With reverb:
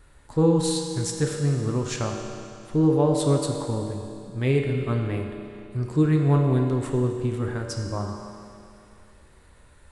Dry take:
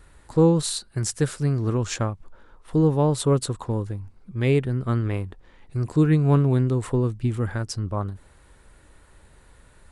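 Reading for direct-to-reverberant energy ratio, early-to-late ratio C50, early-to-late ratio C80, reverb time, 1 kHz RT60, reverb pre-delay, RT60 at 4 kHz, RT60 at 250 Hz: 1.5 dB, 3.0 dB, 4.0 dB, 2.5 s, 2.5 s, 5 ms, 2.5 s, 2.5 s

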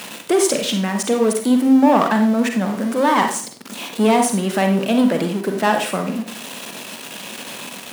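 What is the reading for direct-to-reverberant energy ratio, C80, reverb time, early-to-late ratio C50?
4.0 dB, 11.5 dB, 0.40 s, 6.0 dB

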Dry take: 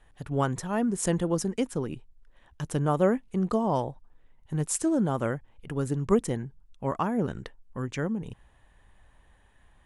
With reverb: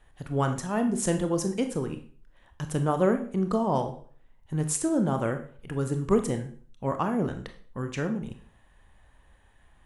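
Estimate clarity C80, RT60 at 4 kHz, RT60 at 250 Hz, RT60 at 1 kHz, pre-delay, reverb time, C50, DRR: 15.0 dB, 0.40 s, 0.50 s, 0.45 s, 23 ms, 0.45 s, 11.0 dB, 6.5 dB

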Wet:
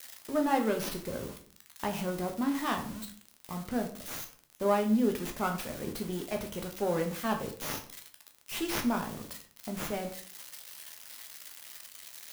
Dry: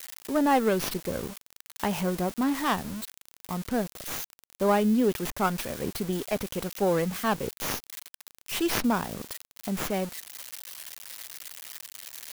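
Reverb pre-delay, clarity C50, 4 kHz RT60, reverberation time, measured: 10 ms, 10.5 dB, 0.35 s, 0.50 s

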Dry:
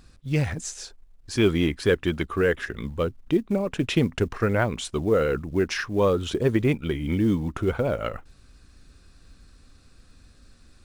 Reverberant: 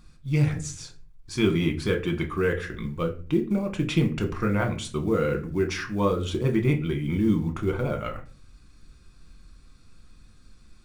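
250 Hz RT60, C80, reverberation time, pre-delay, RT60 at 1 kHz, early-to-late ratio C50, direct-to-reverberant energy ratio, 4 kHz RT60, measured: 0.75 s, 18.5 dB, 0.40 s, 5 ms, 0.35 s, 13.5 dB, 3.5 dB, 0.30 s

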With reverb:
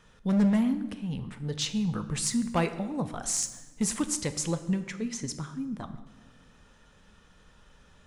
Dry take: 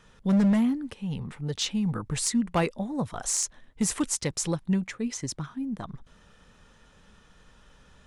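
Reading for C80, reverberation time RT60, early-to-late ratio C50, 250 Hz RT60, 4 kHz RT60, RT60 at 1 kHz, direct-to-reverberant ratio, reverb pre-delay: 14.0 dB, 1.2 s, 12.5 dB, 1.6 s, 0.90 s, 1.1 s, 9.5 dB, 7 ms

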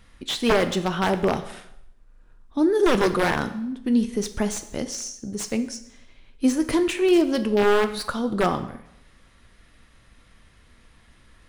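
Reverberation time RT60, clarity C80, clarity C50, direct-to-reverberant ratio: 0.75 s, 15.0 dB, 12.5 dB, 9.0 dB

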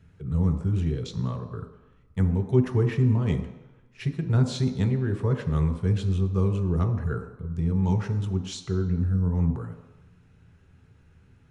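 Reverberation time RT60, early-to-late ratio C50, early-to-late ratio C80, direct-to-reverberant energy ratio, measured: 1.0 s, 9.0 dB, 10.5 dB, 4.0 dB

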